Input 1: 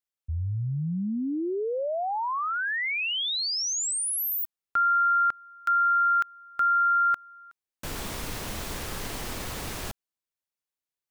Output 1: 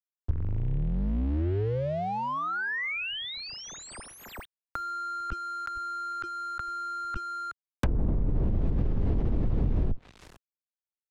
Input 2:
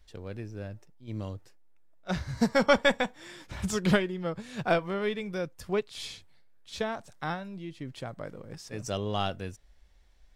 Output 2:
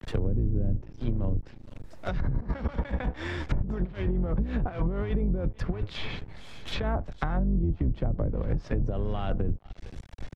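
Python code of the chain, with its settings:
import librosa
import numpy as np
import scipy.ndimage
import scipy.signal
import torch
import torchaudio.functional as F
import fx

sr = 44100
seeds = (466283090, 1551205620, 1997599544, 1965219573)

p1 = fx.octave_divider(x, sr, octaves=2, level_db=3.0)
p2 = fx.over_compress(p1, sr, threshold_db=-35.0, ratio=-1.0)
p3 = fx.high_shelf(p2, sr, hz=7100.0, db=-6.5)
p4 = p3 + fx.echo_single(p3, sr, ms=450, db=-23.0, dry=0)
p5 = np.sign(p4) * np.maximum(np.abs(p4) - 10.0 ** (-51.0 / 20.0), 0.0)
p6 = fx.low_shelf(p5, sr, hz=180.0, db=4.5)
p7 = fx.env_lowpass_down(p6, sr, base_hz=370.0, full_db=-26.0)
p8 = fx.band_squash(p7, sr, depth_pct=70)
y = p8 * 10.0 ** (5.0 / 20.0)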